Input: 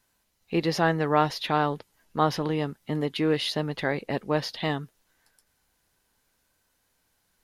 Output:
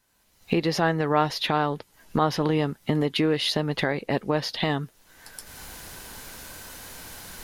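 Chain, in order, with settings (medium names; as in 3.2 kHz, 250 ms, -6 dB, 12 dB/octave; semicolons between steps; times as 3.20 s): recorder AGC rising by 31 dB/s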